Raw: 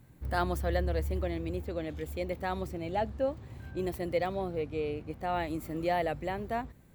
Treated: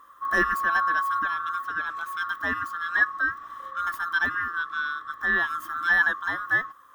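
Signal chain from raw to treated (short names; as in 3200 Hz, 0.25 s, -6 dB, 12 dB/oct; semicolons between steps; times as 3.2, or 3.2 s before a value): band-swap scrambler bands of 1000 Hz; small resonant body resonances 310/1000/1700 Hz, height 10 dB, ringing for 35 ms; gain +3 dB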